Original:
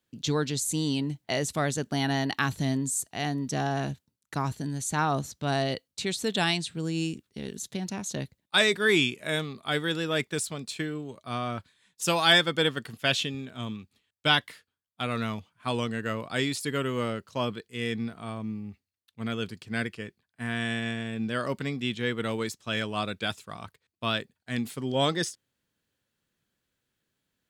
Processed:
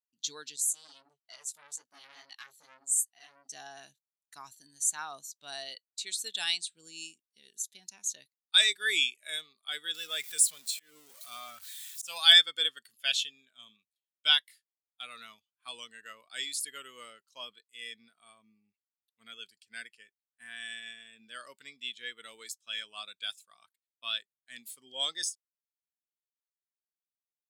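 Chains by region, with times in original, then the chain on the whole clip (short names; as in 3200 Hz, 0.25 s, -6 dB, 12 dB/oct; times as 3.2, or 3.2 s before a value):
0.56–3.52 chorus 2.3 Hz, delay 15.5 ms, depth 5.8 ms + core saturation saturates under 2100 Hz
9.94–12.18 zero-crossing step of -33.5 dBFS + bell 350 Hz -7.5 dB 0.22 oct + auto swell 0.174 s
whole clip: differentiator; spectral expander 1.5:1; gain +9 dB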